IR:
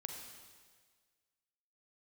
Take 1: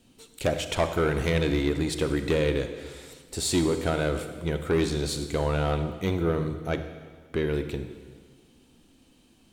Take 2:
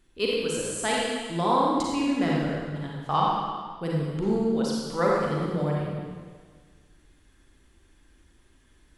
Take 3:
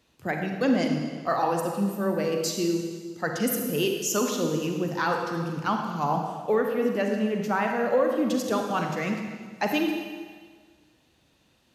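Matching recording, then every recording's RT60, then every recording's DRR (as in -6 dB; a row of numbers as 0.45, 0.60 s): 3; 1.6, 1.6, 1.6 s; 8.5, -4.0, 2.5 dB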